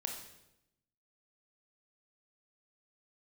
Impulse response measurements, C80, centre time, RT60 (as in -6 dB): 8.0 dB, 31 ms, 0.90 s